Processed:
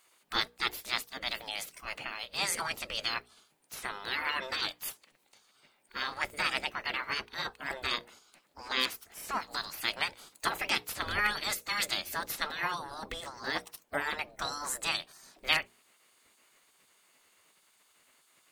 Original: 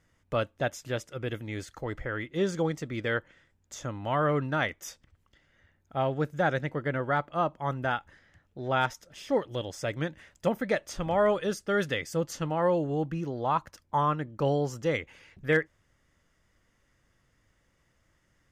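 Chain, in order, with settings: spectral gate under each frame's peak -15 dB weak; high shelf 5400 Hz +6.5 dB; notches 60/120/180/240/300/360/420/480 Hz; formant shift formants +5 st; gain +8 dB

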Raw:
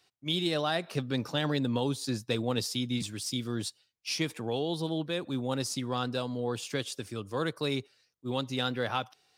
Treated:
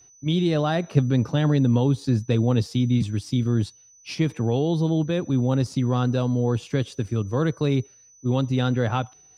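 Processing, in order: RIAA curve playback; in parallel at 0 dB: level quantiser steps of 10 dB; on the sum: whine 6000 Hz -51 dBFS

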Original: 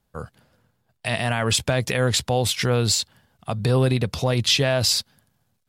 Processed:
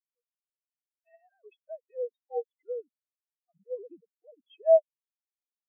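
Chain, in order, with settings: sine-wave speech; spectral expander 4:1; gain -3 dB

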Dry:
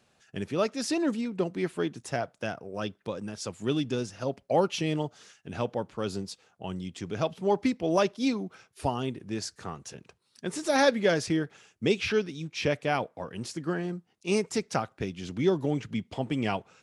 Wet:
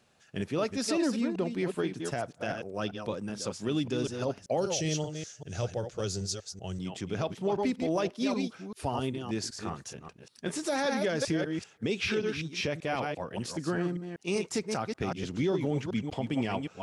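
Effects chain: reverse delay 0.194 s, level -7 dB; 4.57–6.79 fifteen-band EQ 100 Hz +6 dB, 250 Hz -10 dB, 1000 Hz -10 dB, 2500 Hz -4 dB, 6300 Hz +12 dB; limiter -20 dBFS, peak gain reduction 9 dB

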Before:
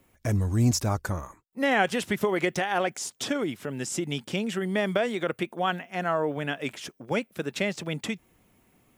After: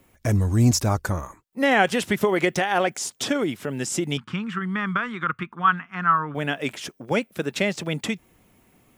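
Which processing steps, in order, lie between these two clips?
4.17–6.35 EQ curve 170 Hz 0 dB, 640 Hz -21 dB, 1200 Hz +11 dB, 1900 Hz -2 dB, 11000 Hz -22 dB; gain +4.5 dB

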